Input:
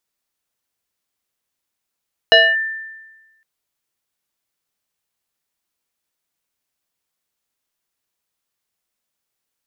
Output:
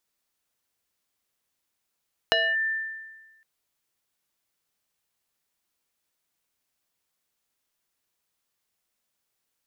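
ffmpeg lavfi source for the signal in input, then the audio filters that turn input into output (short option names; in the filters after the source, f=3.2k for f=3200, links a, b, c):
-f lavfi -i "aevalsrc='0.596*pow(10,-3*t/1.22)*sin(2*PI*1780*t+1.6*clip(1-t/0.24,0,1)*sin(2*PI*0.63*1780*t))':d=1.11:s=44100"
-af "acompressor=threshold=-22dB:ratio=10"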